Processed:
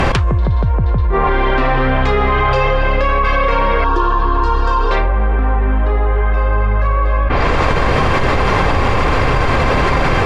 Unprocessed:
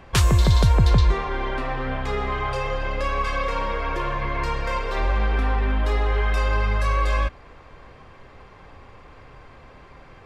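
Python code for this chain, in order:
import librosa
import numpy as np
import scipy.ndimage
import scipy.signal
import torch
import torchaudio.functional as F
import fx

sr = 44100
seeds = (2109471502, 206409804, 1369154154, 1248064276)

y = fx.env_lowpass_down(x, sr, base_hz=1500.0, full_db=-17.0)
y = fx.fixed_phaser(y, sr, hz=580.0, stages=6, at=(3.84, 4.91))
y = fx.env_flatten(y, sr, amount_pct=100)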